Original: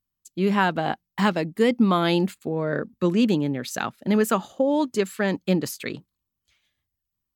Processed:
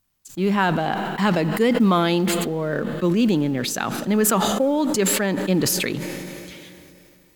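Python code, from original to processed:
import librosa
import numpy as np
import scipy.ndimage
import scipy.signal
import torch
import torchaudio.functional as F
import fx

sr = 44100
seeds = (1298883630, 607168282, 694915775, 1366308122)

y = fx.law_mismatch(x, sr, coded='mu')
y = fx.rev_schroeder(y, sr, rt60_s=3.5, comb_ms=26, drr_db=19.5)
y = fx.sustainer(y, sr, db_per_s=22.0)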